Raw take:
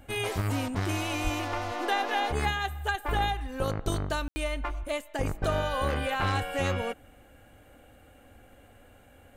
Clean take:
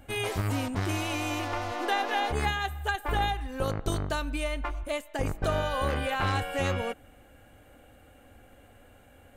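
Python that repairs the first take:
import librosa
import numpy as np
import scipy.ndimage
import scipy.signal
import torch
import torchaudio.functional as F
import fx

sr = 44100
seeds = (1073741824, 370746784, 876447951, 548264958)

y = fx.highpass(x, sr, hz=140.0, slope=24, at=(1.23, 1.35), fade=0.02)
y = fx.fix_ambience(y, sr, seeds[0], print_start_s=8.84, print_end_s=9.34, start_s=4.28, end_s=4.36)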